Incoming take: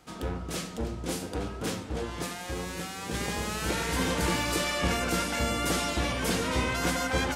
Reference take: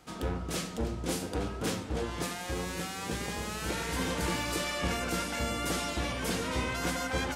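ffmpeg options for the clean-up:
ffmpeg -i in.wav -af "asetnsamples=nb_out_samples=441:pad=0,asendcmd='3.14 volume volume -4dB',volume=0dB" out.wav

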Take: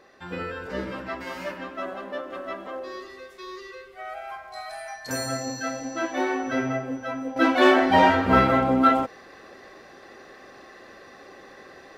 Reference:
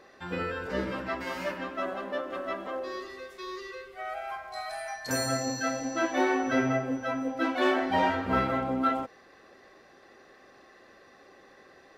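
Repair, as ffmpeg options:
ffmpeg -i in.wav -af "asetnsamples=nb_out_samples=441:pad=0,asendcmd='7.36 volume volume -8.5dB',volume=0dB" out.wav

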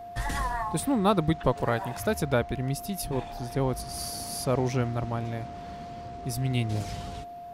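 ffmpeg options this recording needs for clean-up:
ffmpeg -i in.wav -af "bandreject=frequency=700:width=30" out.wav

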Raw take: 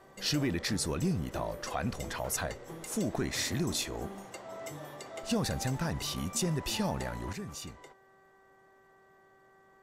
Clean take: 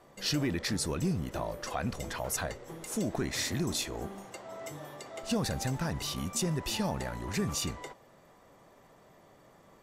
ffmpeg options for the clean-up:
ffmpeg -i in.wav -af "bandreject=frequency=386:width_type=h:width=4,bandreject=frequency=772:width_type=h:width=4,bandreject=frequency=1158:width_type=h:width=4,bandreject=frequency=1544:width_type=h:width=4,bandreject=frequency=1930:width_type=h:width=4,asetnsamples=nb_out_samples=441:pad=0,asendcmd='7.33 volume volume 9.5dB',volume=0dB" out.wav

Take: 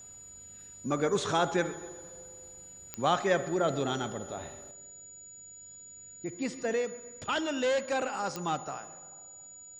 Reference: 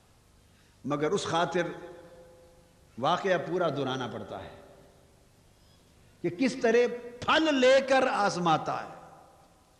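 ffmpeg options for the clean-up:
ffmpeg -i in.wav -af "adeclick=threshold=4,bandreject=frequency=6900:width=30,asetnsamples=nb_out_samples=441:pad=0,asendcmd='4.71 volume volume 7dB',volume=0dB" out.wav

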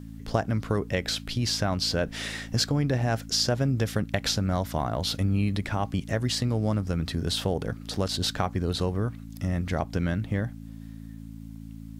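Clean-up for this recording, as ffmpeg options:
ffmpeg -i in.wav -af "bandreject=frequency=55:width_type=h:width=4,bandreject=frequency=110:width_type=h:width=4,bandreject=frequency=165:width_type=h:width=4,bandreject=frequency=220:width_type=h:width=4,bandreject=frequency=275:width_type=h:width=4" out.wav

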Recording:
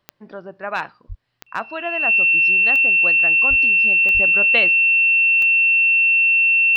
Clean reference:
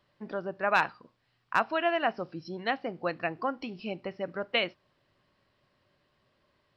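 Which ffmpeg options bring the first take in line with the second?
ffmpeg -i in.wav -filter_complex "[0:a]adeclick=threshold=4,bandreject=frequency=2700:width=30,asplit=3[link_01][link_02][link_03];[link_01]afade=type=out:start_time=1.08:duration=0.02[link_04];[link_02]highpass=frequency=140:width=0.5412,highpass=frequency=140:width=1.3066,afade=type=in:start_time=1.08:duration=0.02,afade=type=out:start_time=1.2:duration=0.02[link_05];[link_03]afade=type=in:start_time=1.2:duration=0.02[link_06];[link_04][link_05][link_06]amix=inputs=3:normalize=0,asplit=3[link_07][link_08][link_09];[link_07]afade=type=out:start_time=3.49:duration=0.02[link_10];[link_08]highpass=frequency=140:width=0.5412,highpass=frequency=140:width=1.3066,afade=type=in:start_time=3.49:duration=0.02,afade=type=out:start_time=3.61:duration=0.02[link_11];[link_09]afade=type=in:start_time=3.61:duration=0.02[link_12];[link_10][link_11][link_12]amix=inputs=3:normalize=0,asplit=3[link_13][link_14][link_15];[link_13]afade=type=out:start_time=4.13:duration=0.02[link_16];[link_14]highpass=frequency=140:width=0.5412,highpass=frequency=140:width=1.3066,afade=type=in:start_time=4.13:duration=0.02,afade=type=out:start_time=4.25:duration=0.02[link_17];[link_15]afade=type=in:start_time=4.25:duration=0.02[link_18];[link_16][link_17][link_18]amix=inputs=3:normalize=0,asetnsamples=nb_out_samples=441:pad=0,asendcmd='4.14 volume volume -5.5dB',volume=0dB" out.wav

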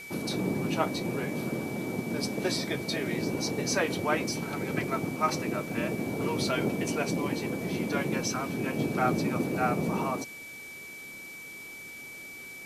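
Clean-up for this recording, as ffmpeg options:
ffmpeg -i in.wav -af "bandreject=frequency=2300:width=30,afwtdn=0.0032" out.wav

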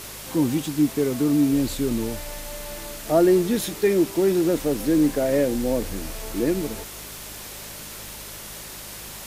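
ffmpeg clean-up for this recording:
ffmpeg -i in.wav -af "bandreject=frequency=52.2:width_type=h:width=4,bandreject=frequency=104.4:width_type=h:width=4,bandreject=frequency=156.6:width_type=h:width=4,bandreject=frequency=208.8:width_type=h:width=4,afwtdn=0.014" out.wav

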